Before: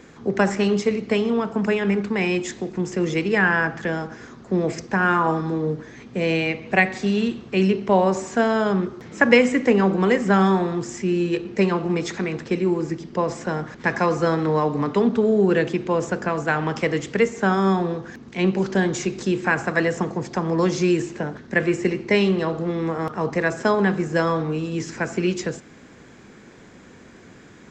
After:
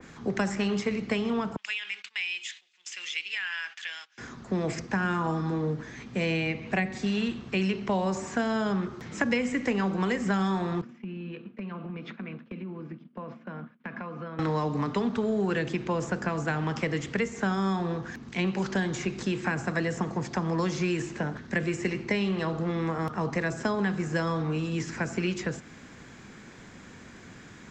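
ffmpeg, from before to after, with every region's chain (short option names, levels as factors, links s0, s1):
-filter_complex "[0:a]asettb=1/sr,asplit=3[s0][s1][s2];[s0]atrim=end=1.564[s3];[s1]atrim=start=1.56:end=4.18,asetpts=PTS-STARTPTS,afade=t=in:d=0.004:c=qsin,afade=t=out:st=2.616:d=0.004:c=qsin,highpass=f=2900:t=q:w=2.6,agate=range=0.141:threshold=0.00501:ratio=16:release=100:detection=peak[s4];[s2]atrim=start=4.176[s5];[s3][s4]acrossfade=d=0.004:c1=hsin:c2=qsin[s6];[s6][s5]acrossfade=d=0.004:c1=qsin:c2=hsin,asettb=1/sr,asplit=3[s7][s8][s9];[s7]atrim=end=10.814[s10];[s8]atrim=start=10.81:end=14.39,asetpts=PTS-STARTPTS,afade=t=in:d=0.004:c=qsin,afade=t=out:st=3.576:d=0.004:c=qsin,agate=range=0.0224:threshold=0.0501:ratio=3:release=100:detection=peak,highpass=f=150:w=0.5412,highpass=f=150:w=1.3066,equalizer=f=230:t=q:w=4:g=10,equalizer=f=360:t=q:w=4:g=-6,equalizer=f=830:t=q:w=4:g=-7,equalizer=f=1900:t=q:w=4:g=-8,lowpass=f=2900:w=0.5412,lowpass=f=2900:w=1.3066,acompressor=threshold=0.0224:ratio=6:attack=3.2:release=140:knee=1:detection=peak[s11];[s9]atrim=start=14.386[s12];[s10][s11]acrossfade=d=0.004:c1=hsin:c2=qsin[s13];[s13][s12]acrossfade=d=0.004:c1=qsin:c2=hsin,equalizer=f=430:t=o:w=1.5:g=-6.5,acrossover=split=120|550|3200[s14][s15][s16][s17];[s14]acompressor=threshold=0.00708:ratio=4[s18];[s15]acompressor=threshold=0.0355:ratio=4[s19];[s16]acompressor=threshold=0.0224:ratio=4[s20];[s17]acompressor=threshold=0.00891:ratio=4[s21];[s18][s19][s20][s21]amix=inputs=4:normalize=0,adynamicequalizer=threshold=0.00562:dfrequency=2600:dqfactor=0.7:tfrequency=2600:tqfactor=0.7:attack=5:release=100:ratio=0.375:range=1.5:mode=cutabove:tftype=highshelf,volume=1.12"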